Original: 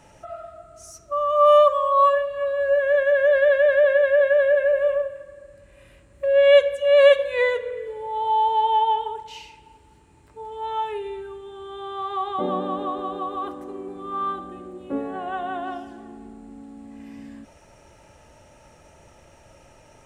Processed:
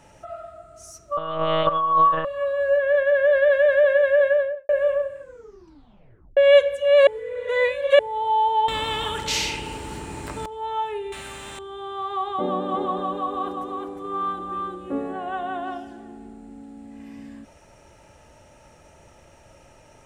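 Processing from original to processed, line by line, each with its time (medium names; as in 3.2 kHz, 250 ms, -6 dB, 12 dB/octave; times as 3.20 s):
1.17–2.25 s: monotone LPC vocoder at 8 kHz 160 Hz
2.77–3.53 s: distance through air 63 m
4.25–4.69 s: studio fade out
5.19 s: tape stop 1.18 s
7.07–7.99 s: reverse
8.68–10.46 s: spectrum-flattening compressor 4:1
11.12–11.59 s: spectrum-flattening compressor 4:1
12.33–15.13 s: delay 357 ms -3.5 dB
15.77–16.96 s: band-stop 1.1 kHz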